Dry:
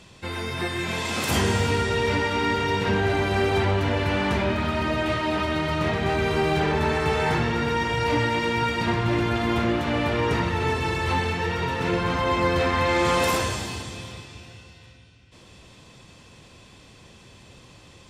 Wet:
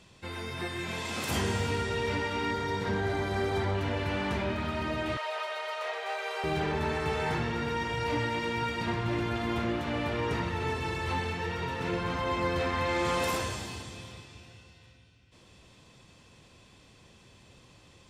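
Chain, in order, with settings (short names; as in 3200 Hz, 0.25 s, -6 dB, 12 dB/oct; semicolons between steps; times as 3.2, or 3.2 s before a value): 2.51–3.75 bell 2700 Hz -11.5 dB 0.22 oct; 5.17–6.44 steep high-pass 450 Hz 72 dB/oct; gain -7.5 dB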